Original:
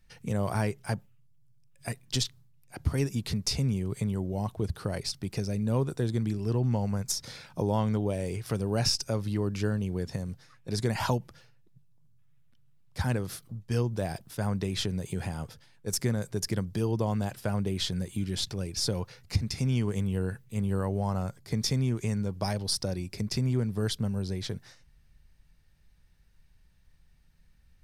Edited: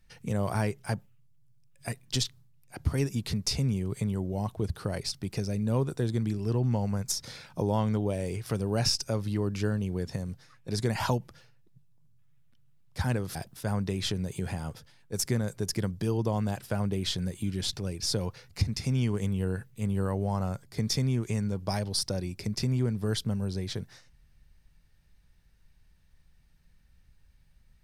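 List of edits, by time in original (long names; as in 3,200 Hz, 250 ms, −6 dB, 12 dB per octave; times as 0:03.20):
0:13.35–0:14.09: remove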